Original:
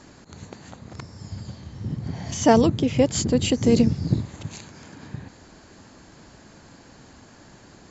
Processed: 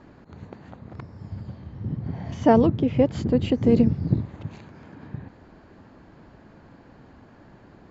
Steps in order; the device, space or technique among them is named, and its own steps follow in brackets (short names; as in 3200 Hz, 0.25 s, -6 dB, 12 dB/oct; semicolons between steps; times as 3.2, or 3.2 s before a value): phone in a pocket (LPF 3400 Hz 12 dB/oct; high shelf 2300 Hz -11 dB)